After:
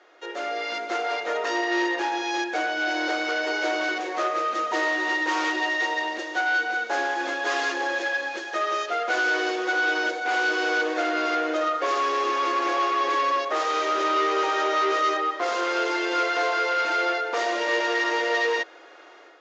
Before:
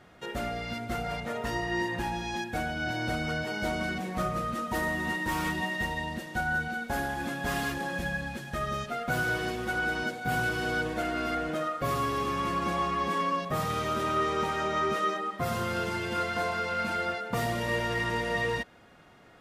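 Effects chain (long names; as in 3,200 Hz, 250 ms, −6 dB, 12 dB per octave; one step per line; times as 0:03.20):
automatic gain control gain up to 8 dB
soft clipping −20 dBFS, distortion −13 dB
Chebyshev band-pass filter 320–6,800 Hz, order 5
level +2 dB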